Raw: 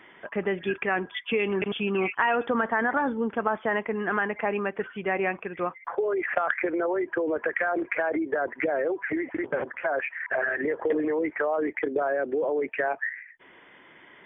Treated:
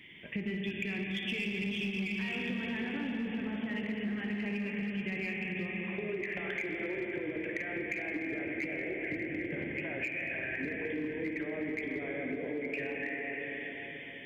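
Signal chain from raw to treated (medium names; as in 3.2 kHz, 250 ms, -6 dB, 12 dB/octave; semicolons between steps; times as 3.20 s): FFT filter 190 Hz 0 dB, 650 Hz -22 dB, 1.4 kHz -27 dB, 2.2 kHz -1 dB; plate-style reverb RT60 4.9 s, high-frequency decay 1×, DRR -2 dB; in parallel at -3 dB: hard clipper -28.5 dBFS, distortion -12 dB; on the sum: compression, threshold -33 dBFS, peak gain reduction 12 dB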